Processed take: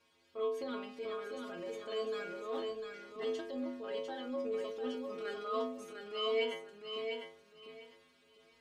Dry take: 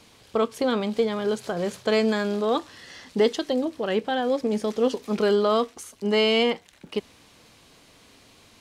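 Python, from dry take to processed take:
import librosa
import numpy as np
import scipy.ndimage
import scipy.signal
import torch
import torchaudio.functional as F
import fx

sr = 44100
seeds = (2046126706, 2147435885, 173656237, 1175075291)

y = fx.rattle_buzz(x, sr, strikes_db=-29.0, level_db=-34.0)
y = fx.peak_eq(y, sr, hz=760.0, db=-9.5, octaves=0.25)
y = fx.stiff_resonator(y, sr, f0_hz=81.0, decay_s=0.77, stiffness=0.008)
y = fx.backlash(y, sr, play_db=-42.5, at=(2.53, 2.94))
y = fx.bass_treble(y, sr, bass_db=-10, treble_db=-9)
y = fx.echo_feedback(y, sr, ms=700, feedback_pct=20, wet_db=-5.5)
y = fx.transient(y, sr, attack_db=-6, sustain_db=2)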